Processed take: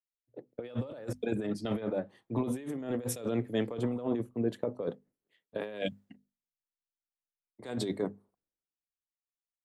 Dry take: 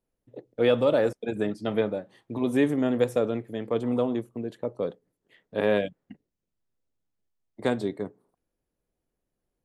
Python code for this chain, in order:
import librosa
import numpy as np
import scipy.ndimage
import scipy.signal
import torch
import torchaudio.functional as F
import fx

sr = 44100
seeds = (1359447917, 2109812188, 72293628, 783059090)

y = fx.hum_notches(x, sr, base_hz=50, count=5)
y = fx.over_compress(y, sr, threshold_db=-31.0, ratio=-1.0)
y = fx.band_widen(y, sr, depth_pct=100)
y = y * librosa.db_to_amplitude(-3.0)